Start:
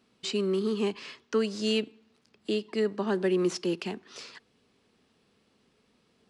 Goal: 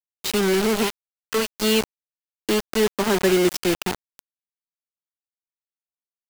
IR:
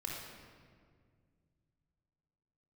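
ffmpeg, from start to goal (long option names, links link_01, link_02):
-filter_complex "[0:a]asettb=1/sr,asplit=3[link_01][link_02][link_03];[link_01]atrim=end=0.834[link_04];[link_02]atrim=start=0.83:end=1.6,asetpts=PTS-STARTPTS,afade=type=in:duration=0.004:curve=qsin,afade=type=out:start_time=0.766:duration=0.004:curve=qsin,equalizer=frequency=110:width=0.3:gain=-10[link_05];[link_03]atrim=start=1.596[link_06];[link_04][link_05]acrossfade=duration=0.004:curve1=hsin:curve2=qsin[link_07];[link_07][link_06]acrossfade=duration=0.004:curve1=qsin:curve2=hsin,acrusher=bits=4:mix=0:aa=0.000001,volume=7dB"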